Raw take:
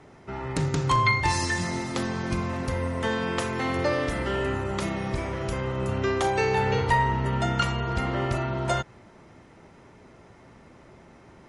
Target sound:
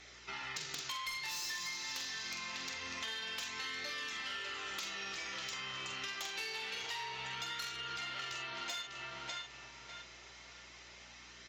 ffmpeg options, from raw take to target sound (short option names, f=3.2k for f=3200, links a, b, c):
-filter_complex "[0:a]aresample=16000,asoftclip=type=tanh:threshold=-22dB,aresample=44100,bandpass=f=3.6k:t=q:w=0.55:csg=0,asplit=2[a][b];[b]adelay=45,volume=-5dB[c];[a][c]amix=inputs=2:normalize=0,asplit=2[d][e];[e]adelay=598,lowpass=f=3.4k:p=1,volume=-7dB,asplit=2[f][g];[g]adelay=598,lowpass=f=3.4k:p=1,volume=0.28,asplit=2[h][i];[i]adelay=598,lowpass=f=3.4k:p=1,volume=0.28[j];[d][f][h][j]amix=inputs=4:normalize=0,acrossover=split=2700[k][l];[l]aeval=exprs='0.0668*sin(PI/2*3.16*val(0)/0.0668)':c=same[m];[k][m]amix=inputs=2:normalize=0,flanger=delay=0.5:depth=6.4:regen=-57:speed=0.26:shape=sinusoidal,aeval=exprs='val(0)+0.000398*(sin(2*PI*60*n/s)+sin(2*PI*2*60*n/s)/2+sin(2*PI*3*60*n/s)/3+sin(2*PI*4*60*n/s)/4+sin(2*PI*5*60*n/s)/5)':c=same,acompressor=threshold=-42dB:ratio=6,volume=2.5dB"